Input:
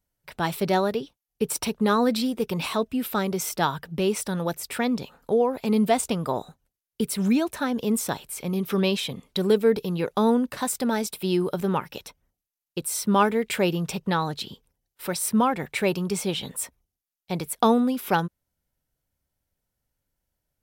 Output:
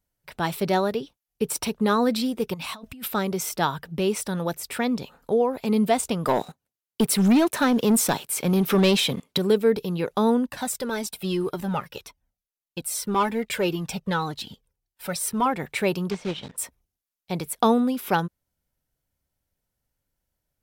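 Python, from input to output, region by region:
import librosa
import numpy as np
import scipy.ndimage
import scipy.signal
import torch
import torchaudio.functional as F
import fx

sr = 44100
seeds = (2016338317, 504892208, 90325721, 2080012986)

y = fx.chain(x, sr, fx.over_compress(threshold_db=-36.0, ratio=-1.0),
    fx.peak_eq(hz=400.0, db=-11.5, octaves=0.61), at=(2.54, 3.08))
y = fx.chain(y, sr, fx.highpass(hz=120.0, slope=12),
    fx.leveller(passes=2), at=(6.25, 9.38))
y = fx.chain(y, sr, fx.leveller(passes=1),
    fx.comb_cascade(direction='falling', hz=1.8), at=(10.46, 15.46))
y = fx.chain(y, sr, fx.block_float(bits=3),
    fx.air_absorb(metres=130.0),
    fx.transient(attack_db=-3, sustain_db=-7), at=(16.1, 16.58))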